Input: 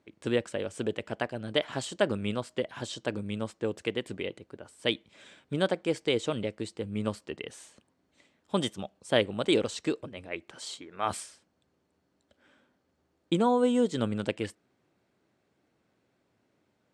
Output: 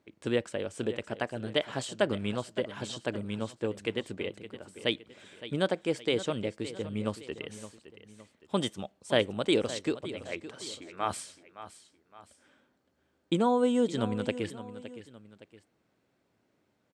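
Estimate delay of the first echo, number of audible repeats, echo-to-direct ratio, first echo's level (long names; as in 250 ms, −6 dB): 565 ms, 2, −13.0 dB, −14.0 dB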